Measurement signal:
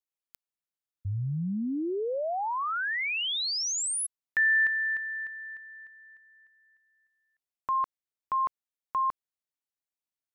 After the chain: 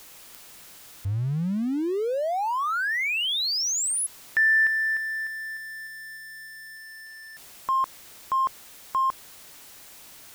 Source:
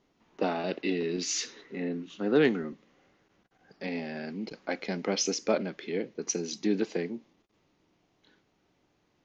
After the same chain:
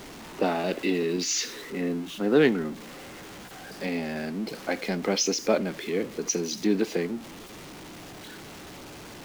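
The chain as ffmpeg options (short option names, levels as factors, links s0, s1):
-af "aeval=exprs='val(0)+0.5*0.00944*sgn(val(0))':c=same,volume=1.41"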